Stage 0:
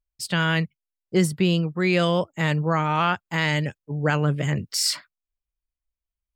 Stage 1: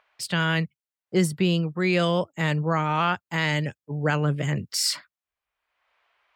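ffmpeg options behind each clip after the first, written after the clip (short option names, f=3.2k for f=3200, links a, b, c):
-filter_complex "[0:a]acrossover=split=580|2800[a][b][c];[b]acompressor=mode=upward:threshold=-38dB:ratio=2.5[d];[a][d][c]amix=inputs=3:normalize=0,highpass=68,volume=-1.5dB"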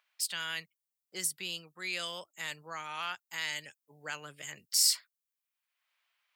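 -af "aderivative,volume=1dB"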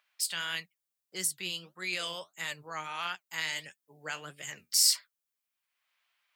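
-af "flanger=delay=5:depth=7.9:regen=63:speed=1.6:shape=sinusoidal,volume=6dB"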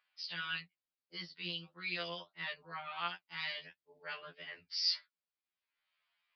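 -af "aresample=11025,aresample=44100,afftfilt=real='re*2*eq(mod(b,4),0)':imag='im*2*eq(mod(b,4),0)':win_size=2048:overlap=0.75,volume=-2.5dB"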